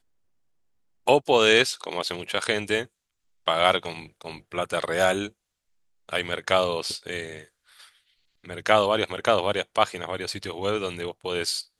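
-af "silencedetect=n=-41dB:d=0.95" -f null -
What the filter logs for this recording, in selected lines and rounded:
silence_start: 0.00
silence_end: 1.07 | silence_duration: 1.07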